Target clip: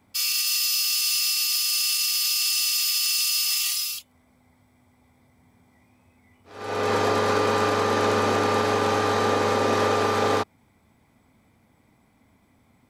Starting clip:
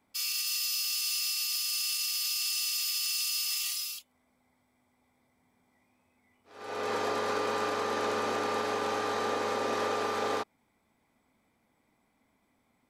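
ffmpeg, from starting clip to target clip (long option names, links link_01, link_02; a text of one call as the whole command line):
ffmpeg -i in.wav -af "equalizer=frequency=94:width_type=o:width=1.9:gain=11,volume=8dB" out.wav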